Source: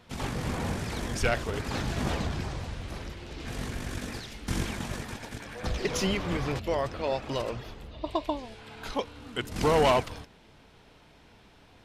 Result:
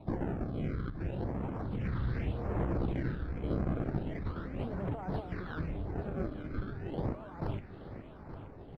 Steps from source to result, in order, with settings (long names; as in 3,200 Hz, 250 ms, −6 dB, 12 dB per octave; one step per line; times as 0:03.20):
mains-hum notches 60/120/180/240/300/360/420 Hz
compressor whose output falls as the input rises −37 dBFS, ratio −1
sample-and-hold swept by an LFO 37×, swing 160% 0.26 Hz
all-pass phaser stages 6, 0.64 Hz, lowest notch 480–3,100 Hz
wrong playback speed 33 rpm record played at 45 rpm
high-frequency loss of the air 480 metres
repeating echo 874 ms, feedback 58%, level −12.5 dB
level +1.5 dB